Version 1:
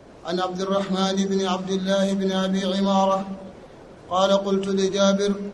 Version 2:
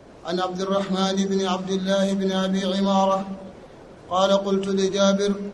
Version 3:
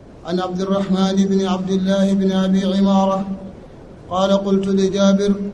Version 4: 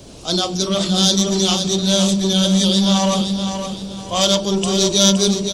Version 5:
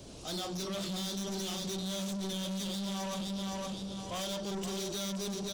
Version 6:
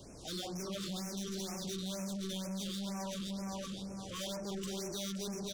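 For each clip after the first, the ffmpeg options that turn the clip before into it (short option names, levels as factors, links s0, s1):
-af anull
-af "lowshelf=f=300:g=11"
-af "asoftclip=type=tanh:threshold=0.237,aexciter=amount=6.8:drive=5:freq=2700,aecho=1:1:517|1034|1551|2068:0.422|0.139|0.0459|0.0152"
-af "acompressor=threshold=0.141:ratio=6,asoftclip=type=tanh:threshold=0.0531,volume=0.355"
-af "afftfilt=real='re*(1-between(b*sr/1024,710*pow(3800/710,0.5+0.5*sin(2*PI*2.1*pts/sr))/1.41,710*pow(3800/710,0.5+0.5*sin(2*PI*2.1*pts/sr))*1.41))':imag='im*(1-between(b*sr/1024,710*pow(3800/710,0.5+0.5*sin(2*PI*2.1*pts/sr))/1.41,710*pow(3800/710,0.5+0.5*sin(2*PI*2.1*pts/sr))*1.41))':win_size=1024:overlap=0.75,volume=0.708"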